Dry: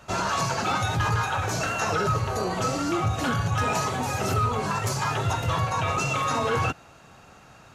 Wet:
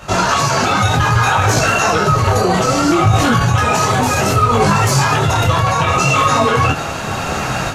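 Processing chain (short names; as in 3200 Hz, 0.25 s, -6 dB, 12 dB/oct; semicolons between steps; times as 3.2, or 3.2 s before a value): AGC gain up to 17 dB; maximiser +20 dB; detuned doubles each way 22 cents; gain -1.5 dB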